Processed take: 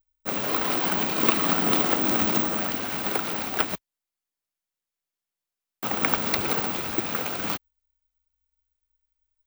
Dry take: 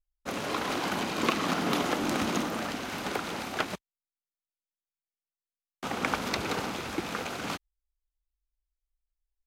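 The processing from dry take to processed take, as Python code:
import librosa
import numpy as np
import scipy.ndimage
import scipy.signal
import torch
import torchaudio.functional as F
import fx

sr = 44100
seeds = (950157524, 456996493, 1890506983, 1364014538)

y = (np.kron(x[::2], np.eye(2)[0]) * 2)[:len(x)]
y = F.gain(torch.from_numpy(y), 3.0).numpy()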